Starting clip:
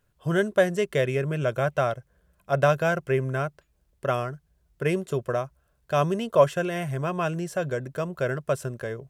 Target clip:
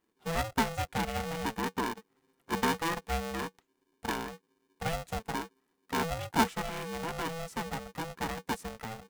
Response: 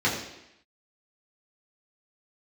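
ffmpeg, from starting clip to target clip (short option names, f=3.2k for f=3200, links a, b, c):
-af "aeval=exprs='val(0)*sgn(sin(2*PI*330*n/s))':c=same,volume=-8.5dB"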